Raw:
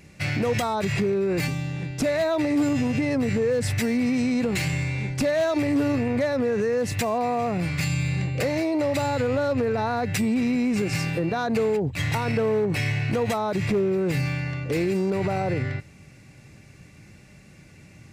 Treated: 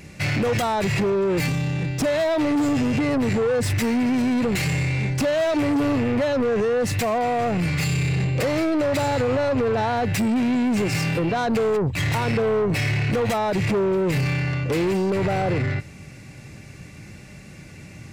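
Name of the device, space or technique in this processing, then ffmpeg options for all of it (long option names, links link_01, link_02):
saturation between pre-emphasis and de-emphasis: -af "highshelf=frequency=3600:gain=8.5,asoftclip=type=tanh:threshold=-25.5dB,highshelf=frequency=3600:gain=-8.5,volume=7.5dB"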